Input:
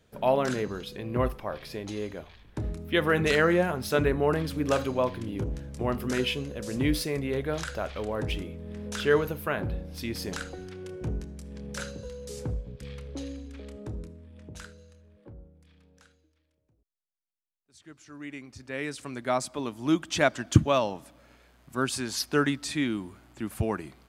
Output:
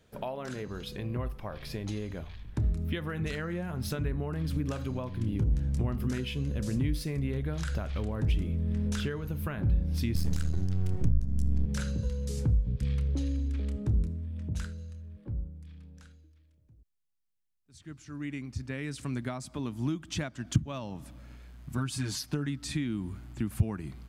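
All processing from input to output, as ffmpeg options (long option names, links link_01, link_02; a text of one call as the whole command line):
ffmpeg -i in.wav -filter_complex "[0:a]asettb=1/sr,asplit=3[link_01][link_02][link_03];[link_01]atrim=end=10.154[link_04];[link_02]atrim=start=10.15:end=11.66,asetpts=PTS-STARTPTS,afade=type=in:duration=0.004:curve=qsin,afade=type=out:start_time=1.506:duration=0.004:curve=qsin,bass=frequency=250:gain=12,treble=frequency=4000:gain=8,aeval=exprs='max(val(0),0)':channel_layout=same[link_05];[link_03]atrim=start=11.656[link_06];[link_04][link_05]acrossfade=duration=0.004:curve1=hsin:curve2=qsin[link_07];[link_07][link_06]acrossfade=duration=0.004:curve1=qsin:curve2=hsin,asettb=1/sr,asplit=3[link_08][link_09][link_10];[link_08]atrim=end=21.774[link_11];[link_09]atrim=start=21.77:end=22.46,asetpts=PTS-STARTPTS,afade=type=in:duration=0.004:curve=qsin,afade=type=out:start_time=0.686:duration=0.004:curve=qsin,aecho=1:1:6.6:0.96,atrim=end_sample=30429,acompressor=threshold=-24dB:ratio=1.5:attack=3.2:release=140:knee=1:detection=peak[link_12];[link_10]atrim=start=22.456[link_13];[link_11][link_12]acrossfade=duration=0.004:curve1=hsin:curve2=qsin[link_14];[link_14][link_13]acrossfade=duration=0.004:curve1=qsin:curve2=hsin,acompressor=threshold=-34dB:ratio=6,asubboost=boost=5:cutoff=210" out.wav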